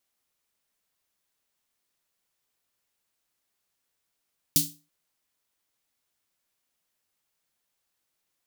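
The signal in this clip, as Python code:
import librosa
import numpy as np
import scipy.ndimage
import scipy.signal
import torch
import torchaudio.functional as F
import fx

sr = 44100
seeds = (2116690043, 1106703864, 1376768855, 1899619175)

y = fx.drum_snare(sr, seeds[0], length_s=0.33, hz=160.0, second_hz=290.0, noise_db=10, noise_from_hz=3600.0, decay_s=0.34, noise_decay_s=0.28)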